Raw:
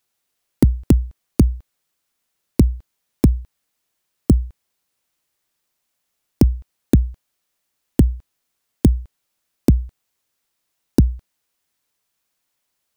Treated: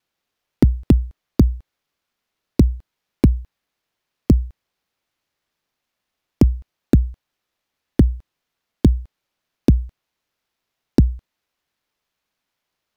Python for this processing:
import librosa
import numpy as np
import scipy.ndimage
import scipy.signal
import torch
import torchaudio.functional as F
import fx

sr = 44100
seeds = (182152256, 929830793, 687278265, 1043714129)

y = scipy.ndimage.median_filter(x, 5, mode='constant')
y = fx.vibrato(y, sr, rate_hz=0.49, depth_cents=7.5)